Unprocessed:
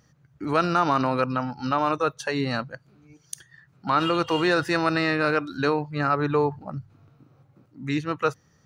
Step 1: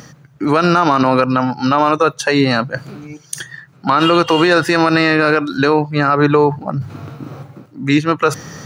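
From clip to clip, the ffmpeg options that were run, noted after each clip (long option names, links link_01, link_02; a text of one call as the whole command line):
ffmpeg -i in.wav -af "highpass=130,areverse,acompressor=mode=upward:threshold=-30dB:ratio=2.5,areverse,alimiter=level_in=14.5dB:limit=-1dB:release=50:level=0:latency=1,volume=-1dB" out.wav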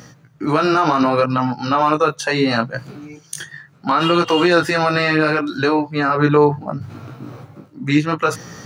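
ffmpeg -i in.wav -af "flanger=delay=16.5:depth=3.8:speed=0.7" out.wav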